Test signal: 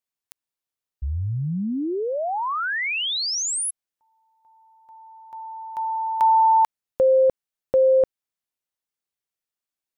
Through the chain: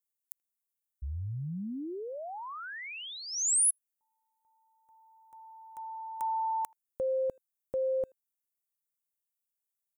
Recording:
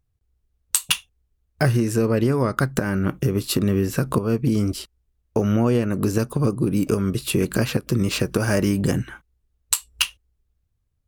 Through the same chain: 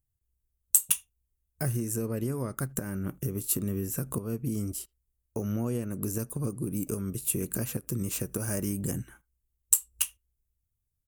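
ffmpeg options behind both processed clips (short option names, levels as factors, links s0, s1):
-filter_complex "[0:a]lowshelf=f=430:g=6.5,asplit=2[s0][s1];[s1]adelay=80,highpass=300,lowpass=3400,asoftclip=type=hard:threshold=0.266,volume=0.0355[s2];[s0][s2]amix=inputs=2:normalize=0,aexciter=amount=9.1:drive=2.4:freq=6400,volume=0.15"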